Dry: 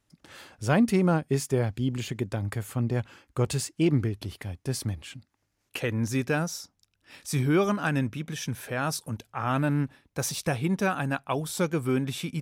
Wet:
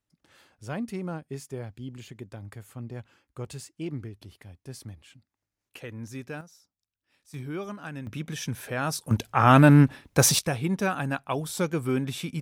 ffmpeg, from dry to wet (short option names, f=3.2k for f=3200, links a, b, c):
-af "asetnsamples=n=441:p=0,asendcmd='6.41 volume volume -20dB;7.34 volume volume -11.5dB;8.07 volume volume 0dB;9.11 volume volume 10.5dB;10.39 volume volume -0.5dB',volume=-11dB"